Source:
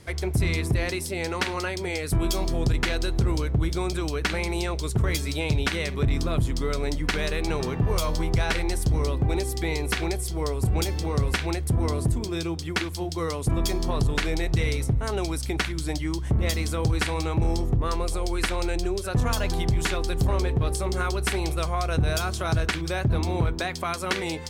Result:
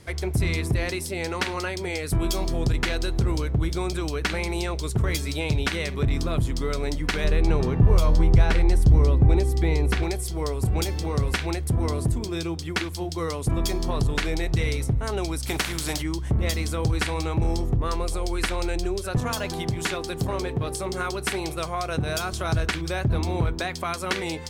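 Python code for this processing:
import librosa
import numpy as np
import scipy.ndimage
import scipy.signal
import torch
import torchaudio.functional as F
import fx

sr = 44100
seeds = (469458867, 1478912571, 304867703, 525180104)

y = fx.tilt_eq(x, sr, slope=-2.0, at=(7.24, 10.03))
y = fx.spec_flatten(y, sr, power=0.62, at=(15.46, 16.01), fade=0.02)
y = fx.highpass(y, sr, hz=110.0, slope=12, at=(19.18, 22.33))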